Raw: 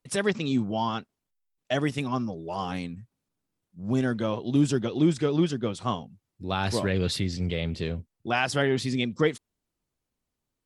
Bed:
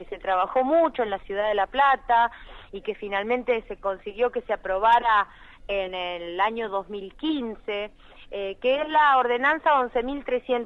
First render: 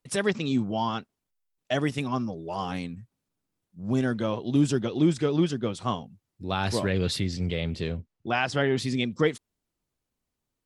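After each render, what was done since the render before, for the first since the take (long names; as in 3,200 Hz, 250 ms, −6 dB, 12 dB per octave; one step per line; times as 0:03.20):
0:07.97–0:08.76: high-frequency loss of the air 72 metres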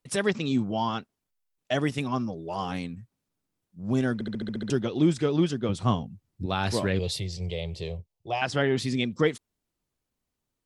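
0:04.14: stutter in place 0.07 s, 8 plays
0:05.69–0:06.46: low-shelf EQ 230 Hz +11 dB
0:06.99–0:08.42: phaser with its sweep stopped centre 610 Hz, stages 4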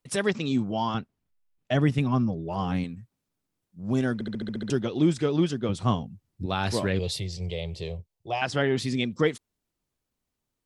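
0:00.94–0:02.84: bass and treble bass +9 dB, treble −7 dB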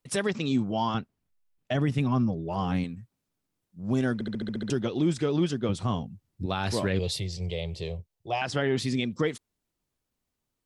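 brickwall limiter −16 dBFS, peak gain reduction 6 dB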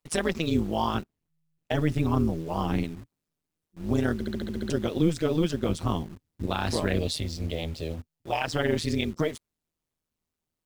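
amplitude modulation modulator 160 Hz, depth 75%
in parallel at −3.5 dB: bit reduction 8 bits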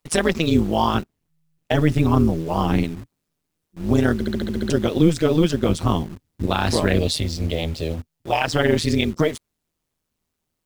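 level +7.5 dB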